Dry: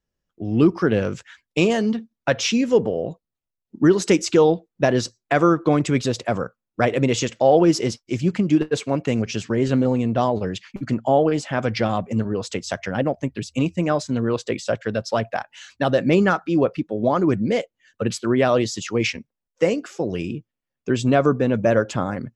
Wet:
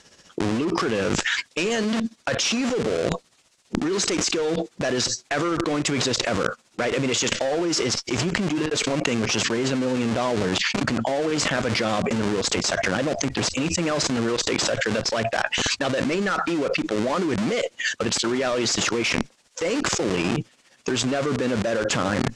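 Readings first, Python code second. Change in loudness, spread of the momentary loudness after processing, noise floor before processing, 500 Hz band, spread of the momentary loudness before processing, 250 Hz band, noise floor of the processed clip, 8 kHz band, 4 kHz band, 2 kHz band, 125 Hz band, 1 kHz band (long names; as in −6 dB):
−2.5 dB, 4 LU, −85 dBFS, −4.5 dB, 10 LU, −4.0 dB, −59 dBFS, +7.5 dB, +6.5 dB, +3.0 dB, −5.5 dB, −3.0 dB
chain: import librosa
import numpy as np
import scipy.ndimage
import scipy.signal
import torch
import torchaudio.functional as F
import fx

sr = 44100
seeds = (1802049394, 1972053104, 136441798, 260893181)

p1 = fx.high_shelf(x, sr, hz=2600.0, db=7.5)
p2 = p1 * (1.0 - 0.63 / 2.0 + 0.63 / 2.0 * np.cos(2.0 * np.pi * 15.0 * (np.arange(len(p1)) / sr)))
p3 = fx.schmitt(p2, sr, flips_db=-31.0)
p4 = p2 + (p3 * librosa.db_to_amplitude(-6.0))
p5 = fx.highpass(p4, sr, hz=370.0, slope=6)
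p6 = fx.dynamic_eq(p5, sr, hz=800.0, q=2.0, threshold_db=-36.0, ratio=4.0, max_db=-5)
p7 = np.clip(p6, -10.0 ** (-16.5 / 20.0), 10.0 ** (-16.5 / 20.0))
p8 = scipy.signal.sosfilt(scipy.signal.butter(4, 8200.0, 'lowpass', fs=sr, output='sos'), p7)
p9 = fx.env_flatten(p8, sr, amount_pct=100)
y = p9 * librosa.db_to_amplitude(-5.0)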